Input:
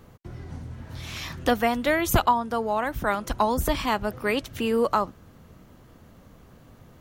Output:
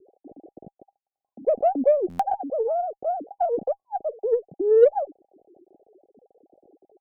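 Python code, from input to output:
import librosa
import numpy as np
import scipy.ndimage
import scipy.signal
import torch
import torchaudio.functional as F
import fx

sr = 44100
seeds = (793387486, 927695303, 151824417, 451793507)

y = fx.sine_speech(x, sr)
y = scipy.signal.sosfilt(scipy.signal.cheby1(10, 1.0, 810.0, 'lowpass', fs=sr, output='sos'), y)
y = fx.cheby_harmonics(y, sr, harmonics=(3, 8), levels_db=(-28, -43), full_scale_db=-10.0)
y = fx.buffer_glitch(y, sr, at_s=(2.09,), block=512, repeats=8)
y = F.gain(torch.from_numpy(y), 5.0).numpy()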